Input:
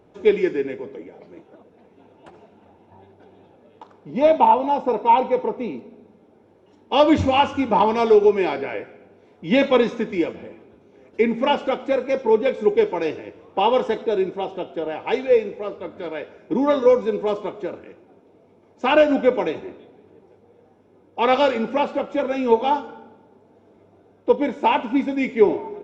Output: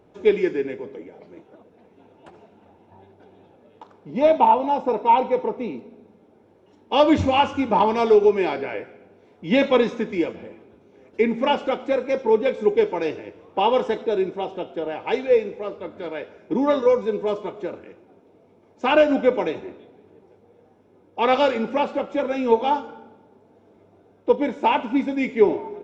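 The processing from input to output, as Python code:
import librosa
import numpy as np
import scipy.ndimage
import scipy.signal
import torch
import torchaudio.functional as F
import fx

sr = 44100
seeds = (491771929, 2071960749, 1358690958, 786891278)

y = fx.notch_comb(x, sr, f0_hz=270.0, at=(16.81, 17.57))
y = y * librosa.db_to_amplitude(-1.0)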